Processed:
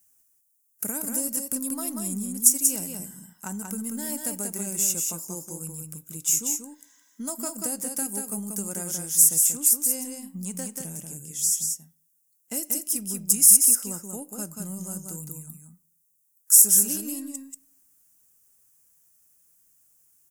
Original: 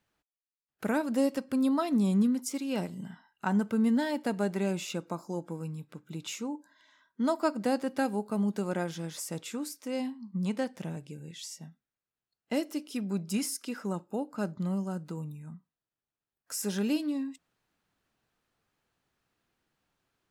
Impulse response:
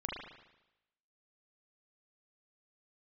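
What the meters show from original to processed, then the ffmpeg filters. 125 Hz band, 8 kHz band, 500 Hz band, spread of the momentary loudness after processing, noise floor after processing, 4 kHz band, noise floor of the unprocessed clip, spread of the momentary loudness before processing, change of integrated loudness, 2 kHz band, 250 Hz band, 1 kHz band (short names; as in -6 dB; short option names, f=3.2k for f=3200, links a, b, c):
-3.5 dB, +23.0 dB, -7.5 dB, 20 LU, -68 dBFS, +5.5 dB, under -85 dBFS, 15 LU, +10.5 dB, -6.0 dB, -5.0 dB, -8.0 dB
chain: -filter_complex "[0:a]equalizer=f=820:w=0.39:g=-5.5,acompressor=threshold=-31dB:ratio=6,aeval=exprs='0.0841*(cos(1*acos(clip(val(0)/0.0841,-1,1)))-cos(1*PI/2))+0.00266*(cos(4*acos(clip(val(0)/0.0841,-1,1)))-cos(4*PI/2))+0.00211*(cos(6*acos(clip(val(0)/0.0841,-1,1)))-cos(6*PI/2))':c=same,aexciter=amount=9.7:drive=9.4:freq=6.1k,aecho=1:1:186:0.596,asplit=2[a][b];[1:a]atrim=start_sample=2205[c];[b][c]afir=irnorm=-1:irlink=0,volume=-23.5dB[d];[a][d]amix=inputs=2:normalize=0,volume=-1.5dB"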